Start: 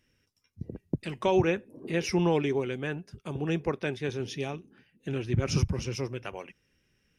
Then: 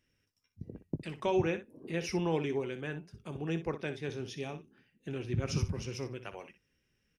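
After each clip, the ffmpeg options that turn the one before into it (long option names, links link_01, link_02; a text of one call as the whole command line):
ffmpeg -i in.wav -af "aecho=1:1:19|61:0.178|0.251,volume=-6dB" out.wav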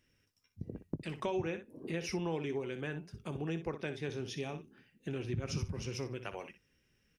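ffmpeg -i in.wav -af "acompressor=threshold=-39dB:ratio=2.5,volume=3dB" out.wav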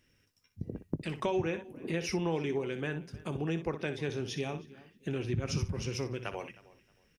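ffmpeg -i in.wav -filter_complex "[0:a]asplit=2[link_01][link_02];[link_02]adelay=313,lowpass=frequency=4200:poles=1,volume=-20.5dB,asplit=2[link_03][link_04];[link_04]adelay=313,lowpass=frequency=4200:poles=1,volume=0.25[link_05];[link_01][link_03][link_05]amix=inputs=3:normalize=0,volume=4dB" out.wav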